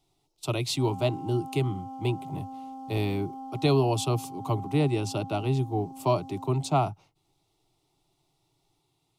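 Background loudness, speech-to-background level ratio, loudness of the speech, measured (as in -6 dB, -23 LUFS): -41.5 LUFS, 13.0 dB, -28.5 LUFS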